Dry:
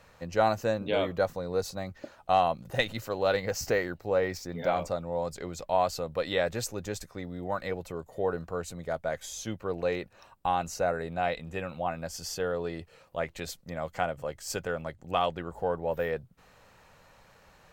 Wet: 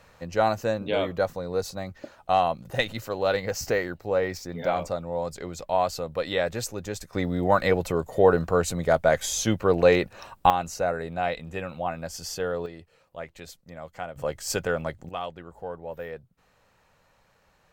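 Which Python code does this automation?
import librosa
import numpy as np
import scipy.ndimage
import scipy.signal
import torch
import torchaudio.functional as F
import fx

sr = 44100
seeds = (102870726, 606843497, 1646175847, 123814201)

y = fx.gain(x, sr, db=fx.steps((0.0, 2.0), (7.13, 11.5), (10.5, 2.0), (12.66, -5.5), (14.16, 6.0), (15.09, -6.0)))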